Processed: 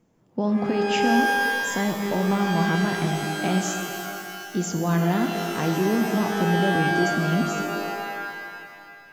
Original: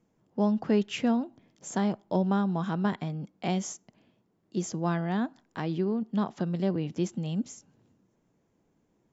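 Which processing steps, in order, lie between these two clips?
limiter -22 dBFS, peak gain reduction 7.5 dB; shimmer reverb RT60 2.3 s, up +12 st, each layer -2 dB, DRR 5 dB; gain +6 dB

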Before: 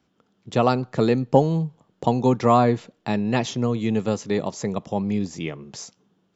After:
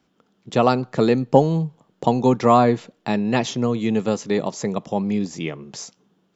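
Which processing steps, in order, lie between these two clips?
bell 92 Hz -10 dB 0.54 oct; gain +2.5 dB

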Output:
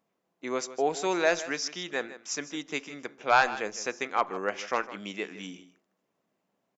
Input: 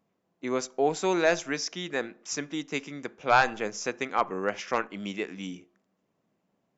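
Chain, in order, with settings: low shelf 220 Hz -11 dB; on a send: echo 0.156 s -15 dB

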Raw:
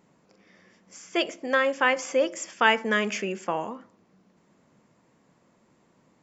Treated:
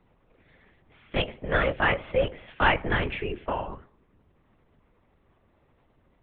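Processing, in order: LPC vocoder at 8 kHz whisper; gain -1 dB

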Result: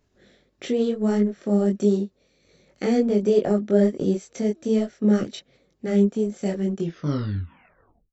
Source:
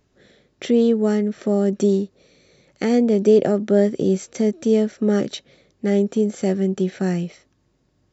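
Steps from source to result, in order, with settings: tape stop at the end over 1.36 s; transient shaper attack -1 dB, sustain -6 dB; chorus voices 6, 1.5 Hz, delay 22 ms, depth 3 ms

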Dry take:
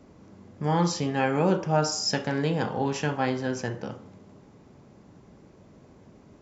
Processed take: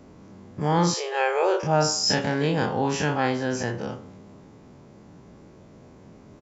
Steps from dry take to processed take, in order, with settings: spectral dilation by 60 ms; 0.94–1.63 brick-wall FIR high-pass 350 Hz; downsampling 32000 Hz

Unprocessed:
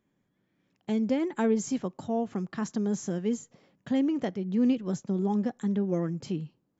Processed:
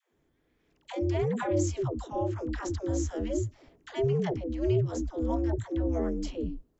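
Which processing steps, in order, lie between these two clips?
in parallel at -0.5 dB: compressor, threshold -36 dBFS, peak gain reduction 14.5 dB; on the sum: ring modulator 130 Hz; dispersion lows, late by 0.139 s, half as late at 400 Hz

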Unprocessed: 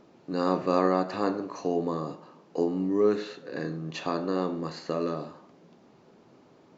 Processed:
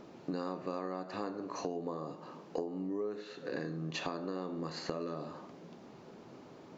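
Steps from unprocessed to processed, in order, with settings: 1.81–3.21 dynamic EQ 640 Hz, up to +6 dB, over -35 dBFS, Q 0.83; compressor 16:1, threshold -38 dBFS, peak gain reduction 23.5 dB; gain +4 dB

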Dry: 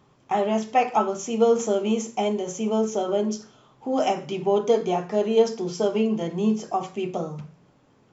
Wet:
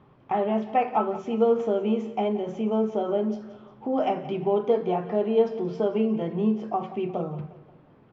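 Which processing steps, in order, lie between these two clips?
air absorption 400 m; in parallel at +1 dB: compressor, threshold -36 dBFS, peak gain reduction 20 dB; on the sum: feedback echo 0.177 s, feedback 46%, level -16 dB; gain -2.5 dB

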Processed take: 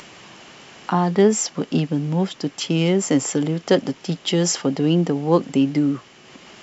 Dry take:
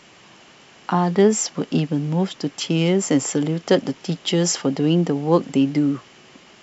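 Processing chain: upward compressor, threshold -36 dBFS

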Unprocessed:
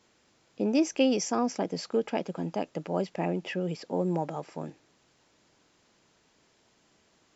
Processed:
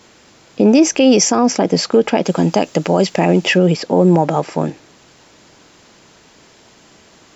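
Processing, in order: 2.25–3.58 high shelf 4300 Hz +11 dB; maximiser +21 dB; gain -2 dB

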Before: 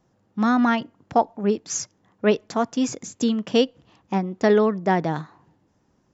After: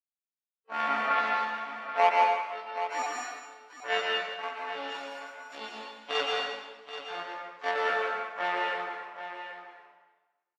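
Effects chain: frequency quantiser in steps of 4 st; spectral noise reduction 29 dB; in parallel at -4.5 dB: decimation with a swept rate 9×, swing 160% 1.2 Hz; on the sum: wow and flutter 16 cents; tempo 0.58×; added harmonics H 3 -11 dB, 7 -33 dB, 8 -28 dB, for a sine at -4.5 dBFS; BPF 720–2200 Hz; on a send: echo 0.78 s -11 dB; on the sum: plate-style reverb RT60 1.2 s, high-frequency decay 0.95×, pre-delay 0.11 s, DRR -1.5 dB; gain -5.5 dB

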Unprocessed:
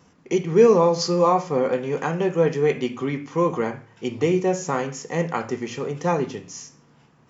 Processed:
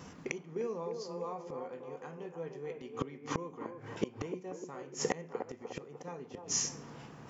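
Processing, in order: flipped gate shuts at -23 dBFS, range -29 dB; band-limited delay 0.301 s, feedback 46%, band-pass 550 Hz, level -5 dB; gain +6 dB

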